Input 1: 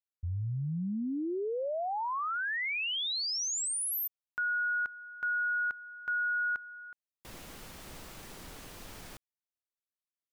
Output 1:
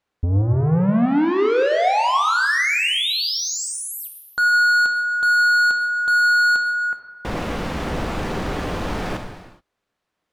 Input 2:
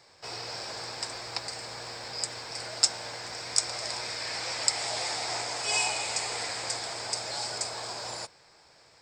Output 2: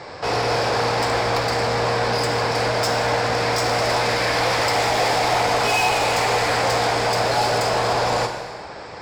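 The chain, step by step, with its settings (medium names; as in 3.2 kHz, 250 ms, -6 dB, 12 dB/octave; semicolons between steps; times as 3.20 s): tilt EQ -4.5 dB/octave; overdrive pedal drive 32 dB, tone 4.3 kHz, clips at -13 dBFS; gated-style reverb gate 450 ms falling, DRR 4.5 dB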